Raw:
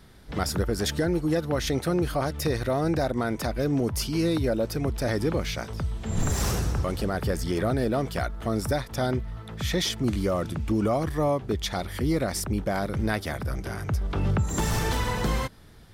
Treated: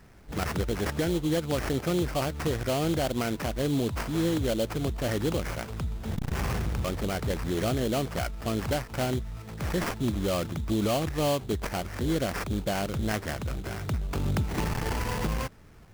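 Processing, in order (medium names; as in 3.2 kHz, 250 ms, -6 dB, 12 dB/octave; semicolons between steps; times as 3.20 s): sample-rate reducer 3.7 kHz, jitter 20%; transformer saturation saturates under 230 Hz; trim -1.5 dB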